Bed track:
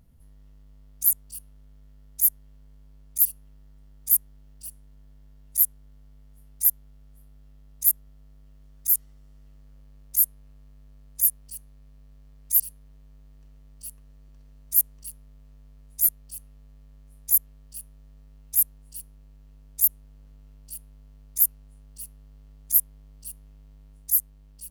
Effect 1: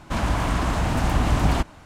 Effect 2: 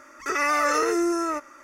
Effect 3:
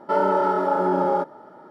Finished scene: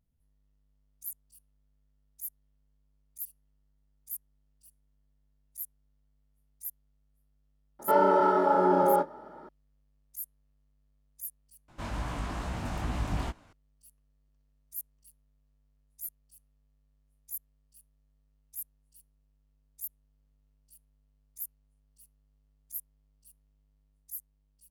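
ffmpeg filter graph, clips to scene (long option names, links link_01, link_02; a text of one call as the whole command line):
ffmpeg -i bed.wav -i cue0.wav -i cue1.wav -i cue2.wav -filter_complex "[0:a]volume=-19.5dB[link_01];[3:a]asplit=2[link_02][link_03];[link_03]adelay=24,volume=-13dB[link_04];[link_02][link_04]amix=inputs=2:normalize=0[link_05];[1:a]flanger=delay=16:depth=5.6:speed=2.4[link_06];[link_01]asplit=2[link_07][link_08];[link_07]atrim=end=11.684[link_09];[link_06]atrim=end=1.85,asetpts=PTS-STARTPTS,volume=-9.5dB[link_10];[link_08]atrim=start=13.526[link_11];[link_05]atrim=end=1.7,asetpts=PTS-STARTPTS,volume=-2.5dB,afade=type=in:duration=0.004:curve=hsin,afade=type=out:start_time=1.696:duration=0.004:curve=hsin,adelay=7790[link_12];[link_09][link_10]acrossfade=duration=0.004:curve1=hsin:curve2=hsin[link_13];[link_13][link_11]acrossfade=duration=0.004:curve1=hsin:curve2=hsin[link_14];[link_14][link_12]amix=inputs=2:normalize=0" out.wav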